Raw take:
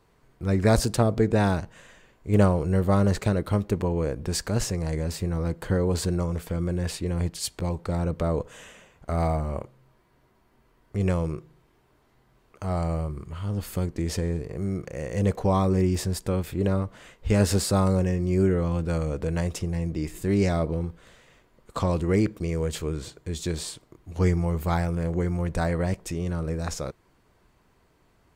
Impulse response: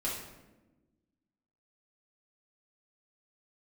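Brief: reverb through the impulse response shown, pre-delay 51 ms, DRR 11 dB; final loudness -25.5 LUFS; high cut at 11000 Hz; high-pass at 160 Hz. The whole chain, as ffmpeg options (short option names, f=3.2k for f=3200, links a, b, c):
-filter_complex "[0:a]highpass=160,lowpass=11k,asplit=2[a][b];[1:a]atrim=start_sample=2205,adelay=51[c];[b][c]afir=irnorm=-1:irlink=0,volume=-15.5dB[d];[a][d]amix=inputs=2:normalize=0,volume=2.5dB"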